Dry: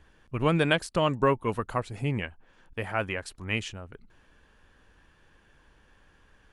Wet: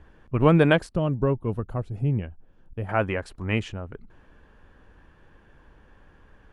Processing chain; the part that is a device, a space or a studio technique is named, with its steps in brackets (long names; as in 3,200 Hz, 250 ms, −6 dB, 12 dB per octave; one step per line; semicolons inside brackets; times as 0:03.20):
through cloth (high-shelf EQ 2,300 Hz −15 dB)
0:00.94–0:02.89: graphic EQ with 10 bands 250 Hz −4 dB, 500 Hz −5 dB, 1,000 Hz −10 dB, 2,000 Hz −12 dB, 4,000 Hz −6 dB, 8,000 Hz −9 dB
level +7.5 dB